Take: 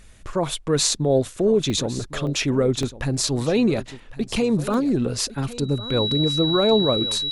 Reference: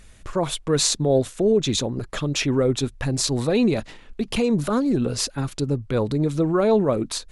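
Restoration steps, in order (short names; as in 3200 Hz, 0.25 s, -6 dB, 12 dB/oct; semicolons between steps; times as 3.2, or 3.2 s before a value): notch 3900 Hz, Q 30; interpolate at 1.7/2.27/2.83/4.74, 1.3 ms; inverse comb 1.105 s -16.5 dB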